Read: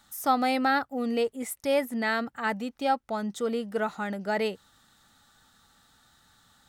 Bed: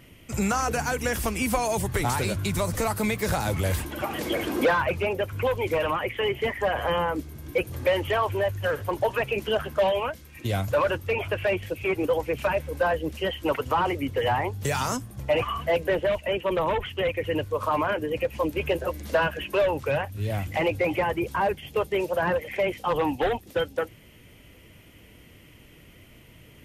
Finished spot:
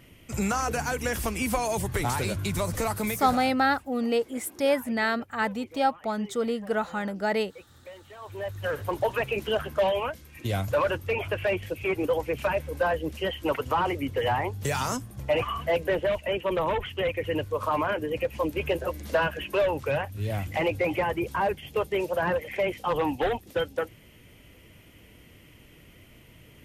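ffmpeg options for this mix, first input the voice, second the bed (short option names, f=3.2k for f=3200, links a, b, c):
-filter_complex "[0:a]adelay=2950,volume=1.5dB[a];[1:a]volume=19dB,afade=t=out:st=2.93:d=0.64:silence=0.0944061,afade=t=in:st=8.18:d=0.65:silence=0.0891251[b];[a][b]amix=inputs=2:normalize=0"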